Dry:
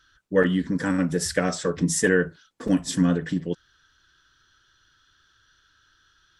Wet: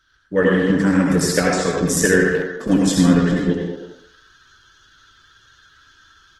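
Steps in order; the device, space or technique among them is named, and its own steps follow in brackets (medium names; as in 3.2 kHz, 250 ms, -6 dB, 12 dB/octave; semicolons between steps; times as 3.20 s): speakerphone in a meeting room (reverberation RT60 0.65 s, pre-delay 71 ms, DRR -1 dB; speakerphone echo 220 ms, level -9 dB; level rider gain up to 7 dB; Opus 16 kbps 48 kHz)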